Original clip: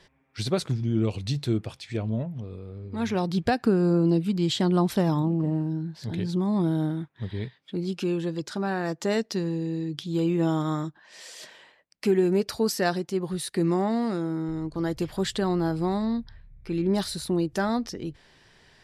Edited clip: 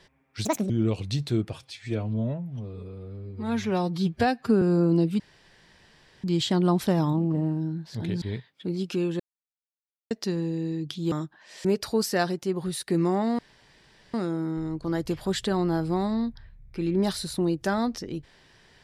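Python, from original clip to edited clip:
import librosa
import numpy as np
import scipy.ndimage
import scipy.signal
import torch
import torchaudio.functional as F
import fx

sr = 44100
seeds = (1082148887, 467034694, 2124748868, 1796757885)

y = fx.edit(x, sr, fx.speed_span(start_s=0.45, length_s=0.41, speed=1.66),
    fx.stretch_span(start_s=1.69, length_s=2.06, factor=1.5),
    fx.insert_room_tone(at_s=4.33, length_s=1.04),
    fx.cut(start_s=6.31, length_s=0.99),
    fx.silence(start_s=8.28, length_s=0.91),
    fx.cut(start_s=10.2, length_s=0.55),
    fx.cut(start_s=11.28, length_s=1.03),
    fx.insert_room_tone(at_s=14.05, length_s=0.75), tone=tone)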